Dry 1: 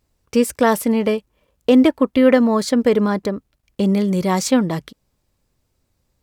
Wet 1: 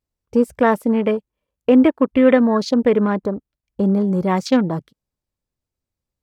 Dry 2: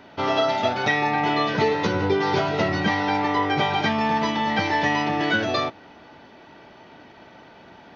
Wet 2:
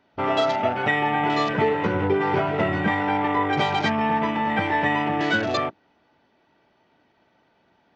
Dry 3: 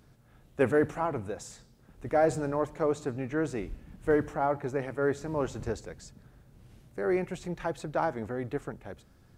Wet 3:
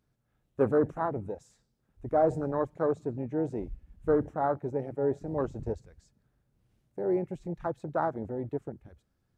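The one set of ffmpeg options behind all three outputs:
-af "afwtdn=0.0282"

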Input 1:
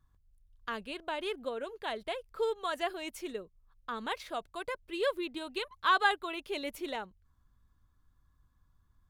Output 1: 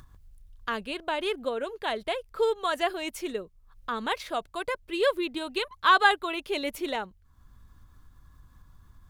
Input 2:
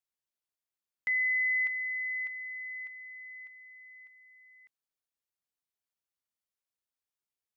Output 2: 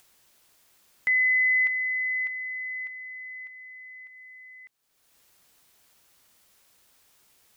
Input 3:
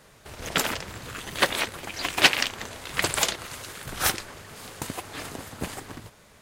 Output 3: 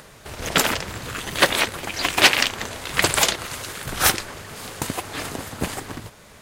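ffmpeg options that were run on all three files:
-af "acompressor=mode=upward:threshold=-49dB:ratio=2.5,apsyclip=11.5dB,volume=-5dB"

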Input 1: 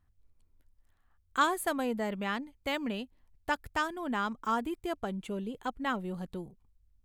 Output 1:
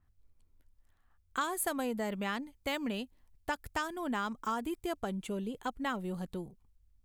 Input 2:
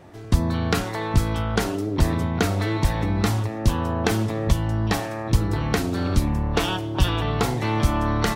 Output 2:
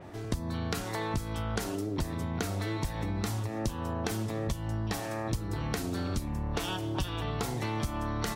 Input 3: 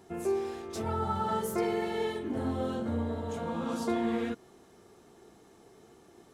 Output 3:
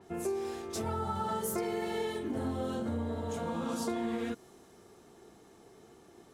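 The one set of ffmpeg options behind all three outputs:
-af "acompressor=threshold=-30dB:ratio=6,adynamicequalizer=threshold=0.002:dfrequency=4700:dqfactor=0.7:tfrequency=4700:tqfactor=0.7:attack=5:release=100:ratio=0.375:range=3:mode=boostabove:tftype=highshelf"

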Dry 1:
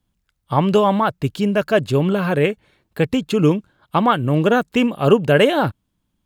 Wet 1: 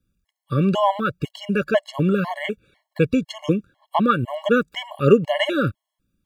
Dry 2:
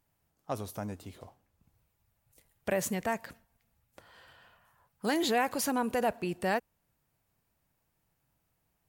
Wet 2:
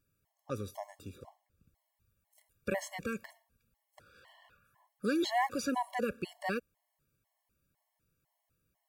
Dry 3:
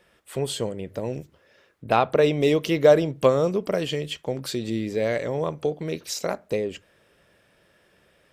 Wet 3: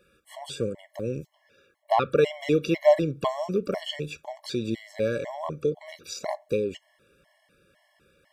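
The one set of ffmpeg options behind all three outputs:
-filter_complex "[0:a]acrossover=split=6800[a][b];[b]acompressor=threshold=-51dB:ratio=4:attack=1:release=60[c];[a][c]amix=inputs=2:normalize=0,afftfilt=real='re*gt(sin(2*PI*2*pts/sr)*(1-2*mod(floor(b*sr/1024/560),2)),0)':imag='im*gt(sin(2*PI*2*pts/sr)*(1-2*mod(floor(b*sr/1024/560),2)),0)':win_size=1024:overlap=0.75"

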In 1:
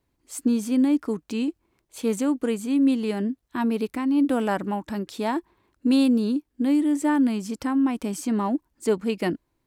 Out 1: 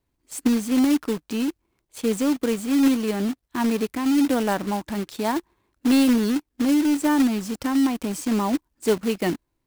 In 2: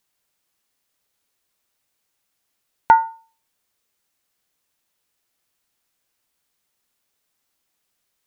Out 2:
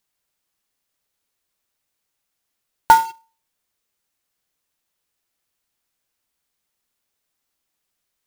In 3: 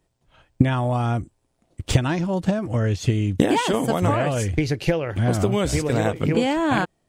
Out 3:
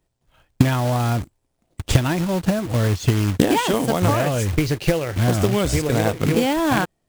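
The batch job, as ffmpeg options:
-filter_complex "[0:a]asplit=2[a][b];[b]acrusher=bits=5:mix=0:aa=0.000001,volume=-3dB[c];[a][c]amix=inputs=2:normalize=0,lowshelf=f=60:g=4.5,acrusher=bits=3:mode=log:mix=0:aa=0.000001,volume=-3.5dB"

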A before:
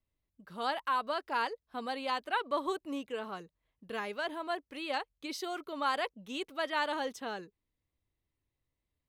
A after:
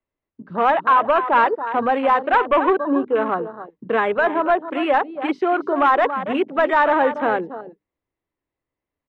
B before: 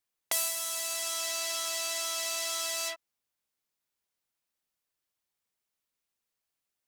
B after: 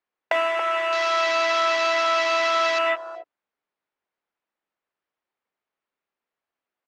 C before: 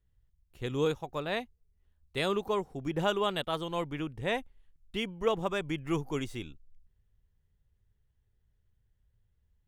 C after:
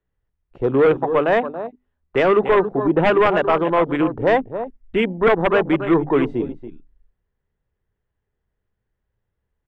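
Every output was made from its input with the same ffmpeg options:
-filter_complex "[0:a]lowpass=1.9k,asplit=2[a][b];[b]acompressor=threshold=-44dB:ratio=10,volume=-0.5dB[c];[a][c]amix=inputs=2:normalize=0,bandreject=f=50:t=h:w=6,bandreject=f=100:t=h:w=6,bandreject=f=150:t=h:w=6,bandreject=f=200:t=h:w=6,bandreject=f=250:t=h:w=6,bandreject=f=300:t=h:w=6,asplit=2[d][e];[e]adelay=279.9,volume=-12dB,highshelf=f=4k:g=-6.3[f];[d][f]amix=inputs=2:normalize=0,acrossover=split=210[g][h];[h]aeval=exprs='0.178*sin(PI/2*2.82*val(0)/0.178)':c=same[i];[g][i]amix=inputs=2:normalize=0,afwtdn=0.0224,volume=5dB"

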